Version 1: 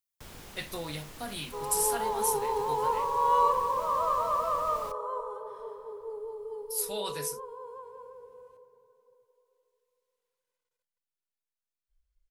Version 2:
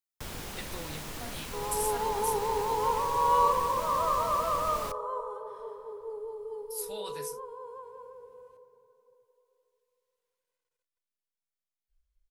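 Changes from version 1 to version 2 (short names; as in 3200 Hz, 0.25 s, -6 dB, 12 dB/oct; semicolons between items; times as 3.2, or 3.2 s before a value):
speech -6.0 dB; first sound +7.5 dB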